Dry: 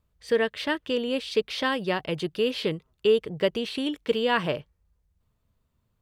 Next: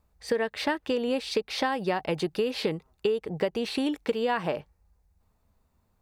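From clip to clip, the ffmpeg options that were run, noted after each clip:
ffmpeg -i in.wav -af "equalizer=frequency=125:width_type=o:width=0.33:gain=-11,equalizer=frequency=800:width_type=o:width=0.33:gain=9,equalizer=frequency=3150:width_type=o:width=0.33:gain=-8,acompressor=threshold=-27dB:ratio=10,volume=4dB" out.wav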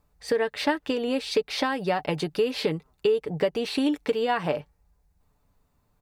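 ffmpeg -i in.wav -af "aecho=1:1:6.9:0.4,volume=1.5dB" out.wav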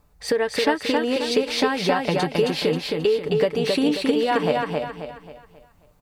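ffmpeg -i in.wav -filter_complex "[0:a]asplit=2[link_01][link_02];[link_02]acompressor=threshold=-34dB:ratio=6,volume=3dB[link_03];[link_01][link_03]amix=inputs=2:normalize=0,aecho=1:1:268|536|804|1072|1340:0.708|0.276|0.108|0.042|0.0164" out.wav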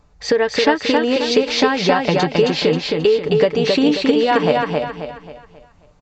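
ffmpeg -i in.wav -af "aresample=16000,aresample=44100,volume=5.5dB" out.wav

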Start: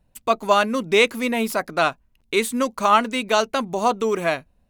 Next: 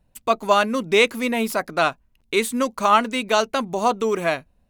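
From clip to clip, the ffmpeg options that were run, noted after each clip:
ffmpeg -i in.wav -af anull out.wav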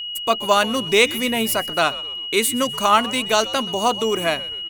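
ffmpeg -i in.wav -filter_complex "[0:a]crystalizer=i=1.5:c=0,asplit=4[link_01][link_02][link_03][link_04];[link_02]adelay=127,afreqshift=-110,volume=-19dB[link_05];[link_03]adelay=254,afreqshift=-220,volume=-26.1dB[link_06];[link_04]adelay=381,afreqshift=-330,volume=-33.3dB[link_07];[link_01][link_05][link_06][link_07]amix=inputs=4:normalize=0,aeval=exprs='val(0)+0.0447*sin(2*PI*2900*n/s)':channel_layout=same" out.wav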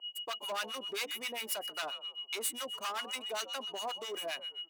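ffmpeg -i in.wav -filter_complex "[0:a]asoftclip=type=hard:threshold=-19dB,acrossover=split=930[link_01][link_02];[link_01]aeval=exprs='val(0)*(1-1/2+1/2*cos(2*PI*7.5*n/s))':channel_layout=same[link_03];[link_02]aeval=exprs='val(0)*(1-1/2-1/2*cos(2*PI*7.5*n/s))':channel_layout=same[link_04];[link_03][link_04]amix=inputs=2:normalize=0,highpass=520,volume=-9dB" out.wav

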